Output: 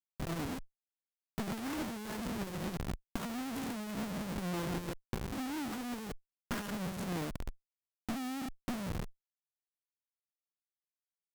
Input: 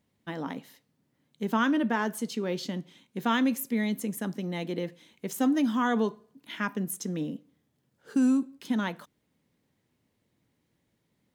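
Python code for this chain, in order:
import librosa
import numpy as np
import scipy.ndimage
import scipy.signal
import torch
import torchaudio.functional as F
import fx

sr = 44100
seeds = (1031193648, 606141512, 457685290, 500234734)

y = fx.spec_steps(x, sr, hold_ms=200)
y = fx.schmitt(y, sr, flips_db=-39.0)
y = fx.cheby_harmonics(y, sr, harmonics=(3, 8), levels_db=(-12, -16), full_scale_db=-27.5)
y = y * 10.0 ** (1.5 / 20.0)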